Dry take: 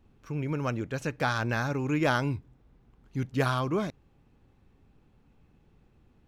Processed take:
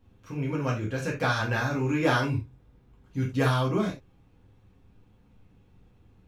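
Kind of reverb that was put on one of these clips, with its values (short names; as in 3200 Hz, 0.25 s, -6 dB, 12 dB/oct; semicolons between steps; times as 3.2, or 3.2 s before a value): non-linear reverb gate 0.11 s falling, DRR -3.5 dB; gain -3 dB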